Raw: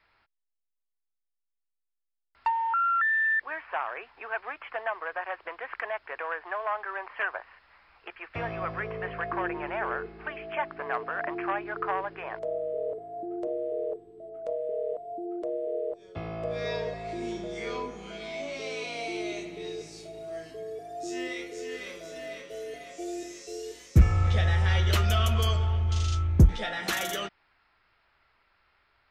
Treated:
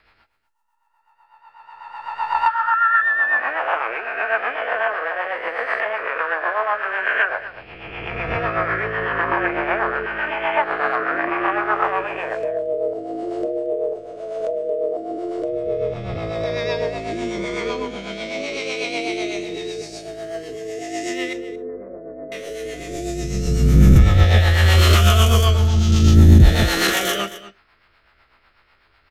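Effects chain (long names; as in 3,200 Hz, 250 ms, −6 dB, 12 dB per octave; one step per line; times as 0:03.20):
peak hold with a rise ahead of every peak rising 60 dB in 1.91 s
0:21.33–0:22.32: Gaussian smoothing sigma 9.1 samples
single-tap delay 225 ms −15 dB
reverb whose tail is shaped and stops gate 120 ms falling, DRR 11.5 dB
rotating-speaker cabinet horn 8 Hz
boost into a limiter +10 dB
level −1 dB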